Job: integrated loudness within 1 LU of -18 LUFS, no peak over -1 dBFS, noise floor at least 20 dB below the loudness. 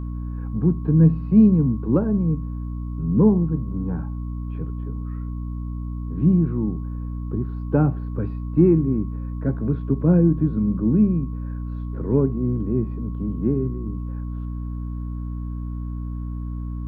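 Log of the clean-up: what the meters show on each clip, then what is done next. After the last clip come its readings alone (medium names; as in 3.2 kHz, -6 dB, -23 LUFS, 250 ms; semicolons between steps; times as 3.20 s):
hum 60 Hz; highest harmonic 300 Hz; hum level -26 dBFS; steady tone 1.1 kHz; tone level -50 dBFS; loudness -23.0 LUFS; peak level -4.5 dBFS; loudness target -18.0 LUFS
-> hum notches 60/120/180/240/300 Hz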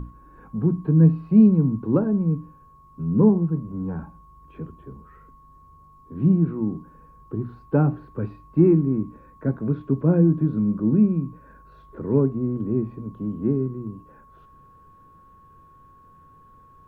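hum not found; steady tone 1.1 kHz; tone level -50 dBFS
-> band-stop 1.1 kHz, Q 30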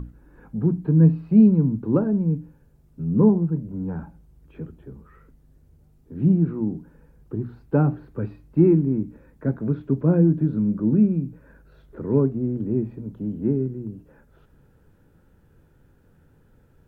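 steady tone not found; loudness -22.0 LUFS; peak level -5.5 dBFS; loudness target -18.0 LUFS
-> trim +4 dB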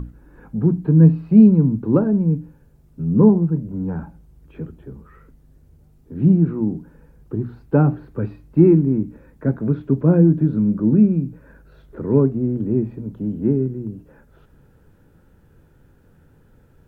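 loudness -18.0 LUFS; peak level -1.5 dBFS; noise floor -54 dBFS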